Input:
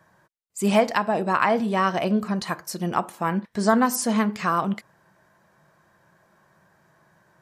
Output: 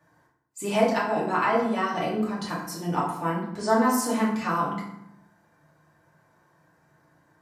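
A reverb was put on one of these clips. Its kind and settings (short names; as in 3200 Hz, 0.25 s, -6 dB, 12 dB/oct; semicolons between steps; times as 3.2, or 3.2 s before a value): FDN reverb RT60 0.78 s, low-frequency decay 1.4×, high-frequency decay 0.65×, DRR -6 dB; gain -9.5 dB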